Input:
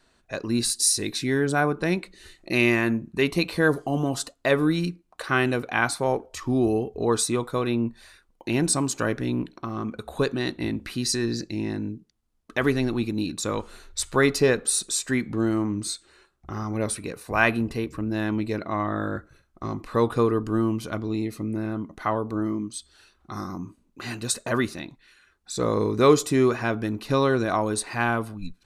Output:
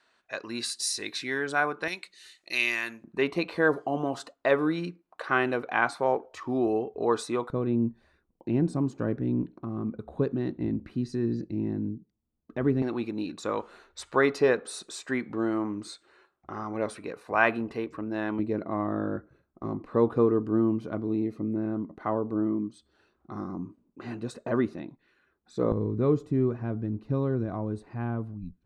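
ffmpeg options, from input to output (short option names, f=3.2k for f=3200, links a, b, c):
-af "asetnsamples=n=441:p=0,asendcmd='1.88 bandpass f 4700;3.04 bandpass f 820;7.5 bandpass f 180;12.82 bandpass f 790;18.39 bandpass f 320;25.72 bandpass f 100',bandpass=f=1.7k:t=q:w=0.58:csg=0"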